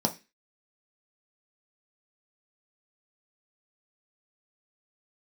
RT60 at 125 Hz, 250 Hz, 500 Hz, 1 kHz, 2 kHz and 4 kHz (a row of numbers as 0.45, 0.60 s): 0.30, 0.30, 0.25, 0.25, 0.35, 0.30 s